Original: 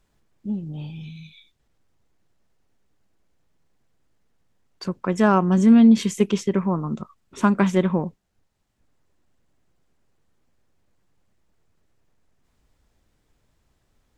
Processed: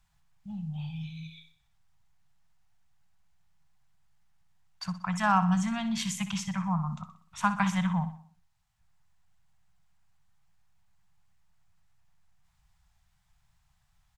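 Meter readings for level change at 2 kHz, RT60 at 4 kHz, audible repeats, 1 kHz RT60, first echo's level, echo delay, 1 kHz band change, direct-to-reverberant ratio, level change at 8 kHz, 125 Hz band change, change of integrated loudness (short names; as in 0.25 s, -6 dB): -2.5 dB, none, 4, none, -12.5 dB, 62 ms, -2.5 dB, none, -1.5 dB, -6.0 dB, -10.5 dB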